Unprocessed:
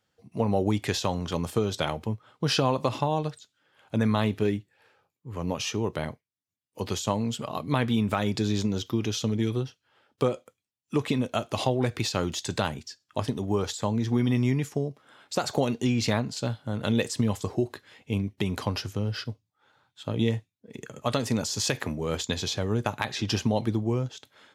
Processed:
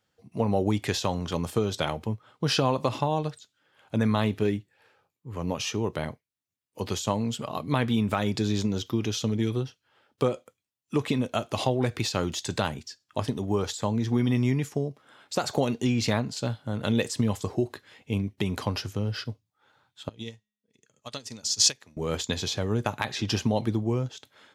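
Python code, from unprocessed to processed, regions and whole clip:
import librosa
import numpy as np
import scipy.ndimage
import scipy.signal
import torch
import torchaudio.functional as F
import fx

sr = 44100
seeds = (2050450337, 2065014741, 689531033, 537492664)

y = fx.chain(x, sr, fx.peak_eq(hz=5500.0, db=14.0, octaves=1.9),
    fx.comb_fb(f0_hz=210.0, decay_s=0.8, harmonics='all', damping=0.0, mix_pct=30),
    fx.upward_expand(threshold_db=-33.0, expansion=2.5), at=(20.09, 21.97))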